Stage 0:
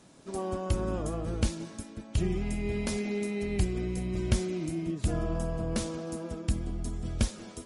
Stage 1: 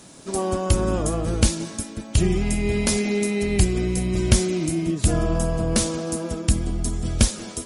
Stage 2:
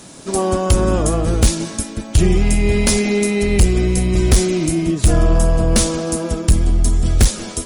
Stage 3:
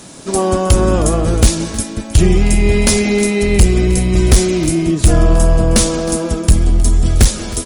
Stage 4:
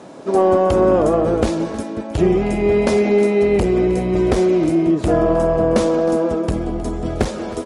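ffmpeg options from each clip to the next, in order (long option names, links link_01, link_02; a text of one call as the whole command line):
ffmpeg -i in.wav -af "highshelf=frequency=4700:gain=9,volume=9dB" out.wav
ffmpeg -i in.wav -af "asubboost=boost=2:cutoff=80,aeval=exprs='1*sin(PI/2*2.51*val(0)/1)':channel_layout=same,volume=-5dB" out.wav
ffmpeg -i in.wav -af "aecho=1:1:314:0.141,volume=3dB" out.wav
ffmpeg -i in.wav -filter_complex "[0:a]bandpass=frequency=570:width_type=q:width=0.94:csg=0,asplit=2[link_01][link_02];[link_02]asoftclip=type=tanh:threshold=-16dB,volume=-8dB[link_03];[link_01][link_03]amix=inputs=2:normalize=0,volume=1.5dB" out.wav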